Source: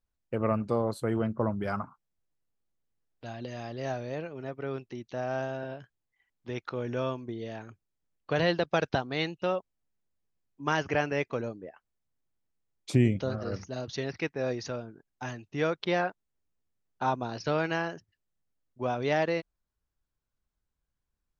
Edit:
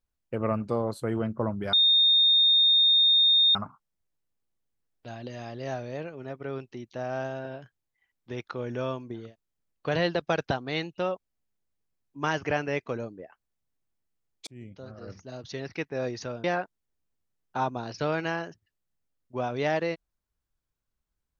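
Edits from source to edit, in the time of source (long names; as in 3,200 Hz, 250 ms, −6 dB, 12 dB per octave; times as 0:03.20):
0:01.73: insert tone 3,670 Hz −17 dBFS 1.82 s
0:07.42–0:07.68: remove, crossfade 0.24 s
0:12.91–0:14.38: fade in
0:14.88–0:15.90: remove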